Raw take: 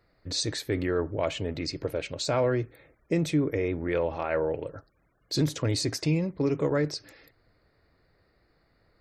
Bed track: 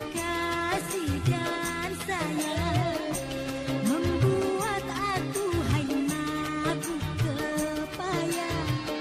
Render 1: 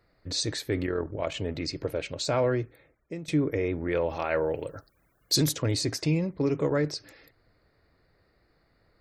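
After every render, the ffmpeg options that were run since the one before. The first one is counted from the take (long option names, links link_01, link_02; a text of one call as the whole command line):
ffmpeg -i in.wav -filter_complex "[0:a]asettb=1/sr,asplit=3[link_01][link_02][link_03];[link_01]atrim=end=0.864[link_04];[link_02]atrim=start=0.86:end=1.34,asetpts=PTS-STARTPTS,afade=type=in:duration=0.004:curve=qsin,afade=type=out:start_time=0.476:duration=0.004:curve=qsin,tremolo=f=41:d=0.571[link_05];[link_03]atrim=start=1.336[link_06];[link_04][link_05]acrossfade=duration=0.004:curve1=hsin:curve2=qsin[link_07];[link_07][link_06]acrossfade=duration=0.004:curve1=qsin:curve2=hsin,asplit=3[link_08][link_09][link_10];[link_08]afade=type=out:start_time=4.08:duration=0.02[link_11];[link_09]aemphasis=mode=production:type=75kf,afade=type=in:start_time=4.08:duration=0.02,afade=type=out:start_time=5.51:duration=0.02[link_12];[link_10]afade=type=in:start_time=5.51:duration=0.02[link_13];[link_11][link_12][link_13]amix=inputs=3:normalize=0,asplit=2[link_14][link_15];[link_14]atrim=end=3.28,asetpts=PTS-STARTPTS,afade=type=out:start_time=2.51:duration=0.77:silence=0.141254[link_16];[link_15]atrim=start=3.28,asetpts=PTS-STARTPTS,afade=type=in:duration=0.004:curve=hsin:silence=0.141254[link_17];[link_16][link_17]concat=n=2:v=0:a=1" out.wav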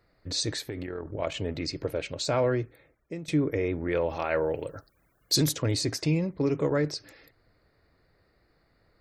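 ffmpeg -i in.wav -filter_complex "[0:a]asettb=1/sr,asplit=3[link_01][link_02][link_03];[link_01]atrim=end=0.684[link_04];[link_02]atrim=start=0.68:end=1.12,asetpts=PTS-STARTPTS,afade=type=in:duration=0.004:curve=qsin,afade=type=out:start_time=0.436:duration=0.004:curve=qsin,acompressor=threshold=-30dB:ratio=12:attack=3.2:release=140:knee=1:detection=peak[link_05];[link_03]atrim=start=1.116[link_06];[link_04][link_05]acrossfade=duration=0.004:curve1=hsin:curve2=qsin[link_07];[link_07][link_06]acrossfade=duration=0.004:curve1=qsin:curve2=hsin" out.wav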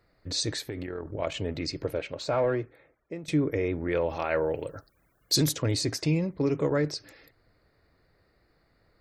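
ffmpeg -i in.wav -filter_complex "[0:a]asettb=1/sr,asplit=3[link_01][link_02][link_03];[link_01]atrim=end=1.994[link_04];[link_02]atrim=start=1.99:end=3.24,asetpts=PTS-STARTPTS,afade=type=in:duration=0.004:curve=qsin,afade=type=out:start_time=1.246:duration=0.004:curve=qsin,asplit=2[link_05][link_06];[link_06]highpass=frequency=720:poles=1,volume=10dB,asoftclip=type=tanh:threshold=-15.5dB[link_07];[link_05][link_07]amix=inputs=2:normalize=0,lowpass=frequency=1200:poles=1,volume=-6dB[link_08];[link_03]atrim=start=3.236[link_09];[link_04][link_08]acrossfade=duration=0.004:curve1=hsin:curve2=qsin[link_10];[link_10][link_09]acrossfade=duration=0.004:curve1=qsin:curve2=hsin" out.wav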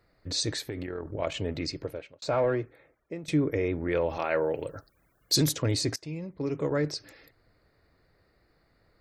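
ffmpeg -i in.wav -filter_complex "[0:a]asettb=1/sr,asplit=3[link_01][link_02][link_03];[link_01]atrim=end=4.184[link_04];[link_02]atrim=start=4.18:end=4.59,asetpts=PTS-STARTPTS,afade=type=in:duration=0.004:curve=qsin,afade=type=out:start_time=0.406:duration=0.004:curve=qsin,highpass=130[link_05];[link_03]atrim=start=4.586[link_06];[link_04][link_05]acrossfade=duration=0.004:curve1=hsin:curve2=qsin[link_07];[link_07][link_06]acrossfade=duration=0.004:curve1=qsin:curve2=hsin,asplit=3[link_08][link_09][link_10];[link_08]atrim=end=2.22,asetpts=PTS-STARTPTS,afade=type=out:start_time=1.64:duration=0.58[link_11];[link_09]atrim=start=2.22:end=5.96,asetpts=PTS-STARTPTS,afade=type=in:duration=0.004:curve=hsin,afade=type=out:start_time=3.736:duration=0.004:curve=hsin:silence=0.125893[link_12];[link_10]atrim=start=5.96,asetpts=PTS-STARTPTS,afade=type=in:duration=1:silence=0.125893[link_13];[link_11][link_12][link_13]concat=n=3:v=0:a=1" out.wav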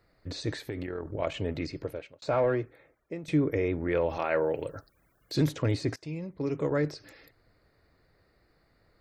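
ffmpeg -i in.wav -filter_complex "[0:a]acrossover=split=2900[link_01][link_02];[link_02]acompressor=threshold=-46dB:ratio=4:attack=1:release=60[link_03];[link_01][link_03]amix=inputs=2:normalize=0" out.wav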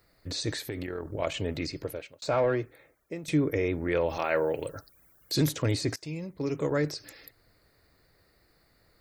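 ffmpeg -i in.wav -af "crystalizer=i=2.5:c=0" out.wav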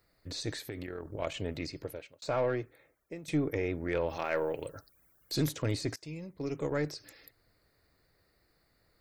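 ffmpeg -i in.wav -af "aeval=exprs='0.2*(cos(1*acos(clip(val(0)/0.2,-1,1)))-cos(1*PI/2))+0.0224*(cos(2*acos(clip(val(0)/0.2,-1,1)))-cos(2*PI/2))+0.0355*(cos(3*acos(clip(val(0)/0.2,-1,1)))-cos(3*PI/2))+0.00398*(cos(5*acos(clip(val(0)/0.2,-1,1)))-cos(5*PI/2))+0.00141*(cos(7*acos(clip(val(0)/0.2,-1,1)))-cos(7*PI/2))':channel_layout=same,asoftclip=type=tanh:threshold=-19.5dB" out.wav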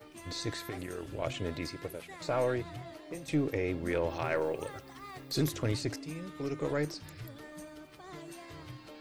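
ffmpeg -i in.wav -i bed.wav -filter_complex "[1:a]volume=-18dB[link_01];[0:a][link_01]amix=inputs=2:normalize=0" out.wav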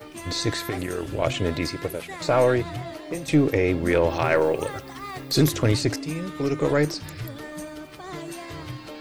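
ffmpeg -i in.wav -af "volume=11dB" out.wav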